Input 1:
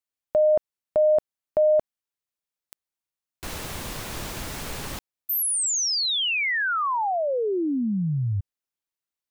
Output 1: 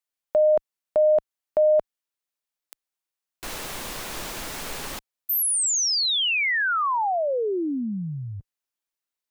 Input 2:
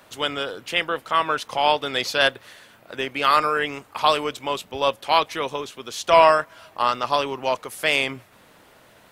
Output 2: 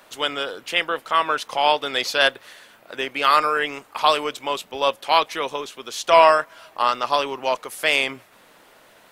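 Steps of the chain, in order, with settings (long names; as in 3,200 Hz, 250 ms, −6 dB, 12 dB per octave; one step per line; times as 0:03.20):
parametric band 83 Hz −11.5 dB 2.4 octaves
level +1.5 dB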